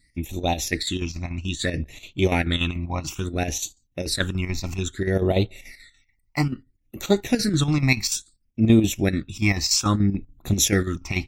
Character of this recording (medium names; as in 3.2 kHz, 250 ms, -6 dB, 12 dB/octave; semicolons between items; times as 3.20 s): phasing stages 8, 0.6 Hz, lowest notch 450–1600 Hz; chopped level 6.9 Hz, depth 60%, duty 70%; AAC